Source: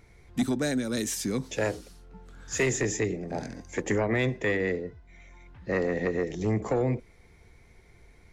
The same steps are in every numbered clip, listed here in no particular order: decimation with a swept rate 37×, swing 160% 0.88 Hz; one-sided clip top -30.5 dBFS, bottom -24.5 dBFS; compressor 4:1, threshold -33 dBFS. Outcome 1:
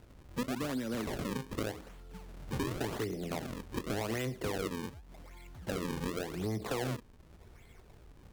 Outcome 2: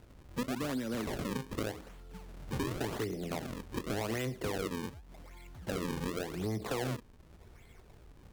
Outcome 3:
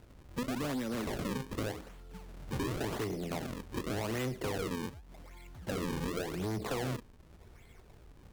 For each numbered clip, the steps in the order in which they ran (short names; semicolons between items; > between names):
compressor > decimation with a swept rate > one-sided clip; decimation with a swept rate > compressor > one-sided clip; decimation with a swept rate > one-sided clip > compressor